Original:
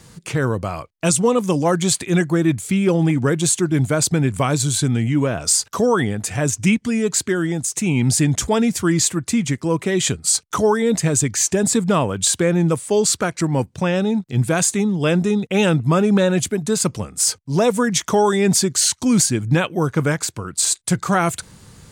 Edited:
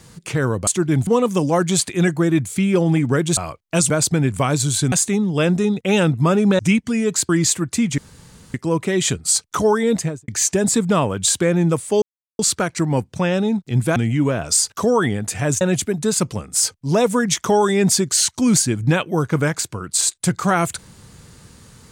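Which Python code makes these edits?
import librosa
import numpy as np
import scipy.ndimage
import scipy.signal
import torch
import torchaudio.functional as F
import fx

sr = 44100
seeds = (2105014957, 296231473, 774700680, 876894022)

y = fx.studio_fade_out(x, sr, start_s=10.91, length_s=0.36)
y = fx.edit(y, sr, fx.swap(start_s=0.67, length_s=0.53, other_s=3.5, other_length_s=0.4),
    fx.swap(start_s=4.92, length_s=1.65, other_s=14.58, other_length_s=1.67),
    fx.cut(start_s=7.27, length_s=1.57),
    fx.insert_room_tone(at_s=9.53, length_s=0.56),
    fx.insert_silence(at_s=13.01, length_s=0.37), tone=tone)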